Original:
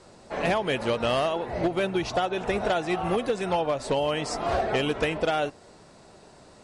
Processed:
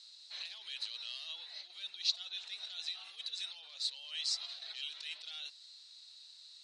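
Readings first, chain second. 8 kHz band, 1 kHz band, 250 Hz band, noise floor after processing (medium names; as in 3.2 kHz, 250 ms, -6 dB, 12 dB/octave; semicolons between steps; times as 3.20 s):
-5.5 dB, -36.0 dB, under -40 dB, -57 dBFS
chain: compressor with a negative ratio -29 dBFS, ratio -1; ladder band-pass 4.2 kHz, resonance 80%; trim +6 dB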